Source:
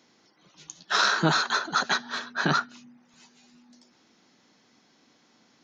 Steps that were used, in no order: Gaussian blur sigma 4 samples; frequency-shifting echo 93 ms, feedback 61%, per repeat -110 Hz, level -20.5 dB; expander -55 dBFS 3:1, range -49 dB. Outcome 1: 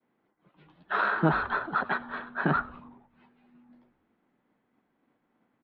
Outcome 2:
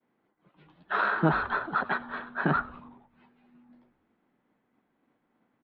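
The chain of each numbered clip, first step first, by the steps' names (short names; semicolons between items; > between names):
expander > Gaussian blur > frequency-shifting echo; expander > frequency-shifting echo > Gaussian blur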